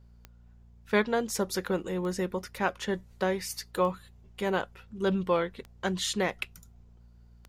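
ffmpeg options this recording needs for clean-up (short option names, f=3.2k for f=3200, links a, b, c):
-af "adeclick=t=4,bandreject=f=58.5:t=h:w=4,bandreject=f=117:t=h:w=4,bandreject=f=175.5:t=h:w=4,bandreject=f=234:t=h:w=4"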